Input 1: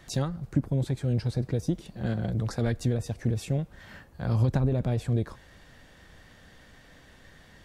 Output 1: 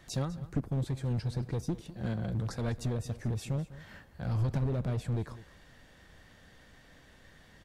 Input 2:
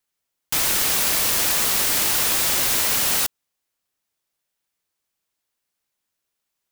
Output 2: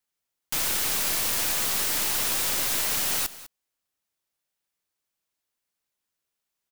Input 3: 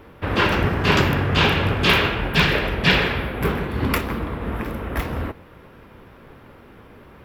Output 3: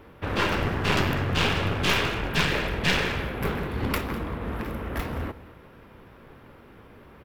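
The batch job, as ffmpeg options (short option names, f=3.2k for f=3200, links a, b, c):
-af "aeval=exprs='clip(val(0),-1,0.0708)':c=same,aecho=1:1:201:0.141,volume=-4dB"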